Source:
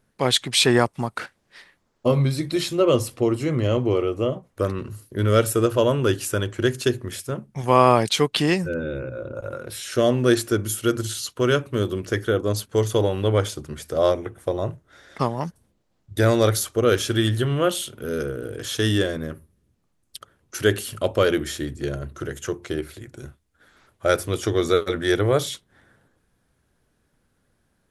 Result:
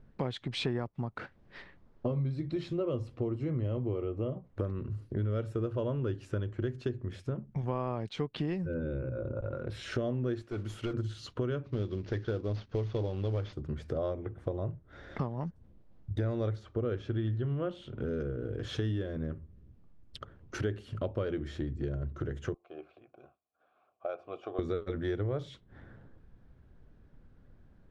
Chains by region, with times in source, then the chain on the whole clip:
10.42–10.94 s: block-companded coder 5-bit + bass shelf 470 Hz -9.5 dB + hard clipper -24.5 dBFS
11.64–13.53 s: CVSD coder 32 kbps + short-mantissa float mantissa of 4-bit + treble shelf 3 kHz +11 dB
16.55–17.98 s: Bessel low-pass 9.1 kHz + treble shelf 5.5 kHz -10.5 dB
22.54–24.59 s: vowel filter a + bass shelf 150 Hz -11.5 dB
whole clip: low-pass 4.4 kHz 12 dB/octave; tilt EQ -3 dB/octave; compression 4:1, threshold -34 dBFS

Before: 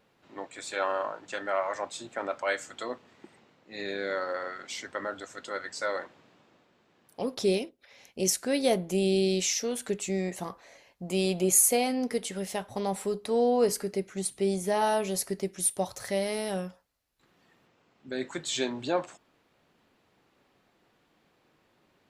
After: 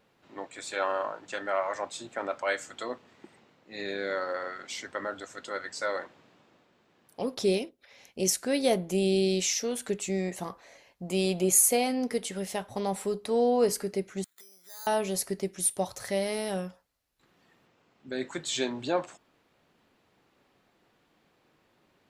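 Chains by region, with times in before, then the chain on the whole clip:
14.24–14.87 s: compression 12:1, threshold -38 dBFS + band-pass filter 1.5 kHz, Q 3.1 + careless resampling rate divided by 8×, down filtered, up zero stuff
whole clip: none

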